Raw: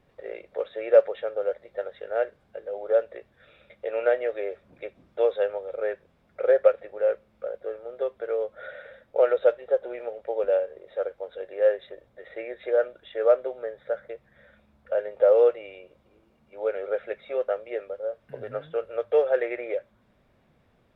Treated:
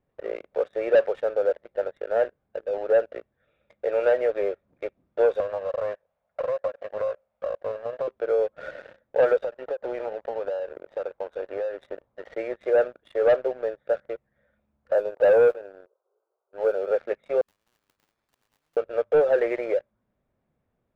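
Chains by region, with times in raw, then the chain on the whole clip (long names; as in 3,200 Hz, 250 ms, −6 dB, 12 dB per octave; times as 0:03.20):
0:05.40–0:08.08: low shelf with overshoot 440 Hz −10 dB, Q 3 + downward compressor 8 to 1, threshold −29 dBFS + highs frequency-modulated by the lows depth 0.29 ms
0:09.44–0:12.35: parametric band 1,000 Hz +8.5 dB 0.94 octaves + downward compressor 20 to 1, threshold −30 dBFS
0:14.95–0:16.91: linear-phase brick-wall band-pass 360–1,600 Hz + noise that follows the level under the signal 33 dB
0:17.41–0:18.77: downward compressor 12 to 1, threshold −43 dBFS + sample-rate reduction 2,900 Hz + every bin compressed towards the loudest bin 10 to 1
whole clip: leveller curve on the samples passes 3; low-pass filter 1,400 Hz 6 dB per octave; level −5.5 dB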